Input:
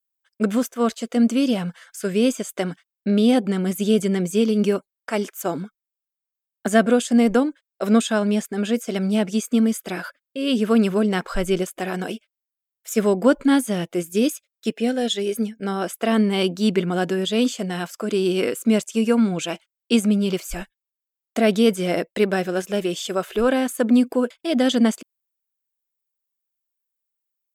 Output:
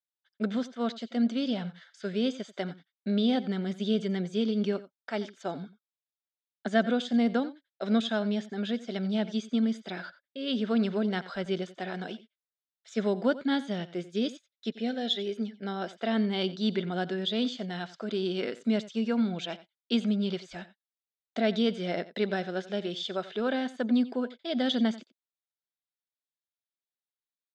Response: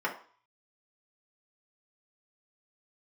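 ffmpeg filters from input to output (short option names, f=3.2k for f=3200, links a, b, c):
-af "highpass=160,equalizer=f=310:t=q:w=4:g=-7,equalizer=f=480:t=q:w=4:g=-5,equalizer=f=1.1k:t=q:w=4:g=-8,equalizer=f=2.6k:t=q:w=4:g=-7,equalizer=f=3.7k:t=q:w=4:g=7,lowpass=f=4.8k:w=0.5412,lowpass=f=4.8k:w=1.3066,aecho=1:1:89:0.141,volume=-6.5dB"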